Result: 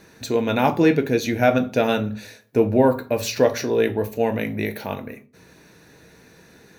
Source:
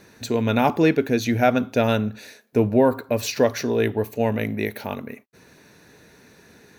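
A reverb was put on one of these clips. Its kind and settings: shoebox room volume 150 m³, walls furnished, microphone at 0.64 m

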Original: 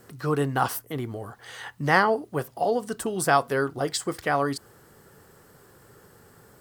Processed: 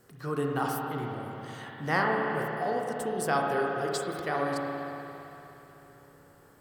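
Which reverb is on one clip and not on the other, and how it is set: spring tank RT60 3.5 s, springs 32/57 ms, chirp 55 ms, DRR -1 dB; gain -8 dB

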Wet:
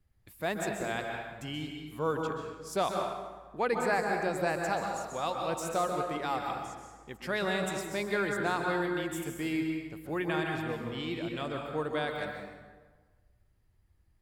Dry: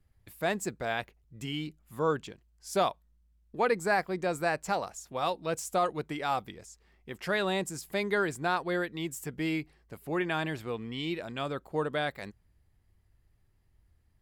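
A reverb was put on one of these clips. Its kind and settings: plate-style reverb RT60 1.4 s, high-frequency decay 0.65×, pre-delay 0.115 s, DRR 1.5 dB; gain -3 dB

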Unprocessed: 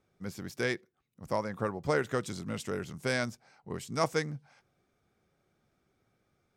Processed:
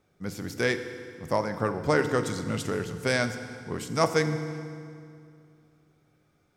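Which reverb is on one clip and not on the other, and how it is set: FDN reverb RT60 2.3 s, low-frequency decay 1.25×, high-frequency decay 0.8×, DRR 8 dB; gain +5 dB

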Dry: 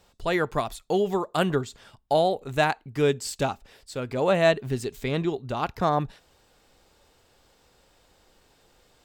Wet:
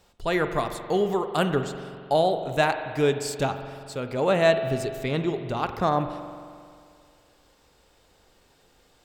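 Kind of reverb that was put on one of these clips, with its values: spring tank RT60 2.2 s, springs 44 ms, chirp 50 ms, DRR 8 dB

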